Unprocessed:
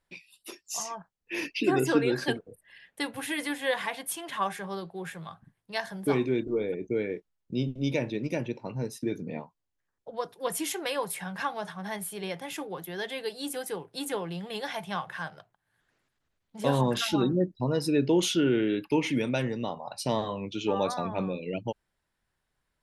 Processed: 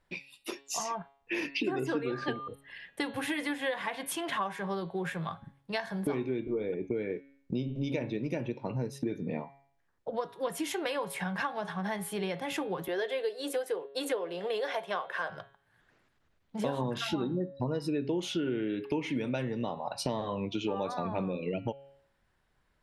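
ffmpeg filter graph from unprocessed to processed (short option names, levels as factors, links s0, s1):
-filter_complex "[0:a]asettb=1/sr,asplit=3[s0][s1][s2];[s0]atrim=end=2.064[s3];[s1]atrim=start=2.06:end=2.48,asetpts=PTS-STARTPTS,afade=t=in:d=0.004:c=qsin,afade=t=out:st=0.416:d=0.004:c=qsin,lowpass=5200,aeval=exprs='val(0)+0.0141*sin(2*PI*1200*n/s)':c=same[s4];[s2]atrim=start=2.476[s5];[s3][s4]acrossfade=d=0.004:c1=hsin:c2=qsin[s6];[s6][s5]acrossfade=d=0.004:c1=qsin:c2=hsin,asettb=1/sr,asplit=3[s7][s8][s9];[s7]atrim=end=12.884[s10];[s8]atrim=start=12.88:end=15.3,asetpts=PTS-STARTPTS,afade=t=in:d=0.004:c=qsin,afade=t=out:st=2.416:d=0.004:c=qsin,agate=range=0.0224:threshold=0.00631:ratio=3:release=100:detection=peak,highpass=f=460:t=q:w=2.2,bandreject=f=830:w=8.3[s11];[s9]atrim=start=15.296[s12];[s10][s11]acrossfade=d=0.004:c1=hsin:c2=qsin[s13];[s13][s12]acrossfade=d=0.004:c1=qsin:c2=hsin,highshelf=f=5100:g=-11.5,bandreject=f=138.3:t=h:w=4,bandreject=f=276.6:t=h:w=4,bandreject=f=414.9:t=h:w=4,bandreject=f=553.2:t=h:w=4,bandreject=f=691.5:t=h:w=4,bandreject=f=829.8:t=h:w=4,bandreject=f=968.1:t=h:w=4,bandreject=f=1106.4:t=h:w=4,bandreject=f=1244.7:t=h:w=4,bandreject=f=1383:t=h:w=4,bandreject=f=1521.3:t=h:w=4,bandreject=f=1659.6:t=h:w=4,bandreject=f=1797.9:t=h:w=4,bandreject=f=1936.2:t=h:w=4,bandreject=f=2074.5:t=h:w=4,bandreject=f=2212.8:t=h:w=4,bandreject=f=2351.1:t=h:w=4,bandreject=f=2489.4:t=h:w=4,bandreject=f=2627.7:t=h:w=4,bandreject=f=2766:t=h:w=4,bandreject=f=2904.3:t=h:w=4,bandreject=f=3042.6:t=h:w=4,bandreject=f=3180.9:t=h:w=4,bandreject=f=3319.2:t=h:w=4,bandreject=f=3457.5:t=h:w=4,bandreject=f=3595.8:t=h:w=4,bandreject=f=3734.1:t=h:w=4,bandreject=f=3872.4:t=h:w=4,bandreject=f=4010.7:t=h:w=4,bandreject=f=4149:t=h:w=4,bandreject=f=4287.3:t=h:w=4,bandreject=f=4425.6:t=h:w=4,acompressor=threshold=0.0126:ratio=5,volume=2.37"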